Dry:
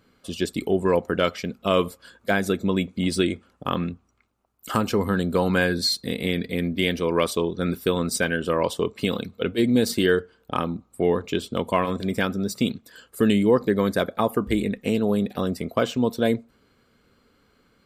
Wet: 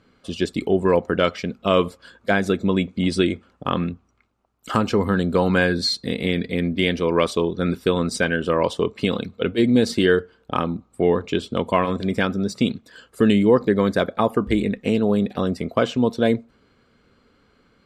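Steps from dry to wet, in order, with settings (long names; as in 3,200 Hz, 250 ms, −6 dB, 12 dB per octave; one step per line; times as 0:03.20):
high-frequency loss of the air 64 metres
level +3 dB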